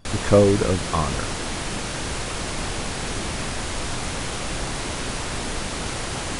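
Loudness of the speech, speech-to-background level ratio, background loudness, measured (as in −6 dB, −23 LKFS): −21.0 LKFS, 7.0 dB, −28.0 LKFS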